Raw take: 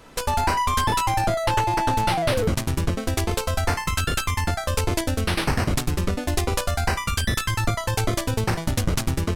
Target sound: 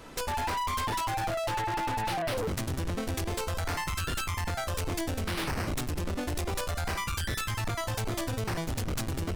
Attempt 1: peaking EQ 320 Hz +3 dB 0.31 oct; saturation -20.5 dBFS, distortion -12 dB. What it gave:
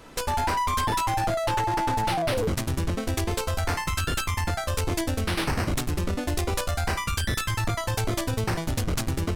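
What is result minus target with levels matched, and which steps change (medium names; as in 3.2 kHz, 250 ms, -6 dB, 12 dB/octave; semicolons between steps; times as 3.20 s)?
saturation: distortion -6 dB
change: saturation -29 dBFS, distortion -6 dB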